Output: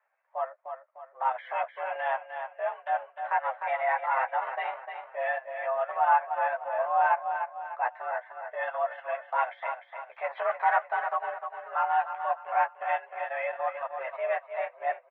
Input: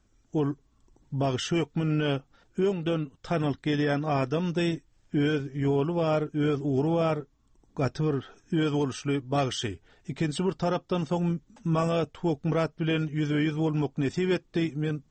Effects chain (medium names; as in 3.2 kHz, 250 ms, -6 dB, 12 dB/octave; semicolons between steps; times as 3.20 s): 10.24–10.87 s: waveshaping leveller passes 2; chorus voices 6, 0.56 Hz, delay 13 ms, depth 3.4 ms; mistuned SSB +250 Hz 460–2000 Hz; feedback delay 301 ms, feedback 43%, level -7.5 dB; transient shaper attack -2 dB, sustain -6 dB; trim +7 dB